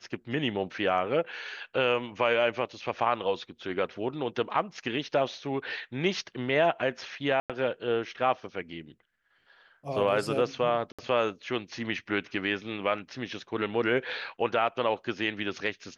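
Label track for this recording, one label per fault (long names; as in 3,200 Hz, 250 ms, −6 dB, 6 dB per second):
7.400000	7.500000	drop-out 97 ms
10.920000	10.990000	drop-out 66 ms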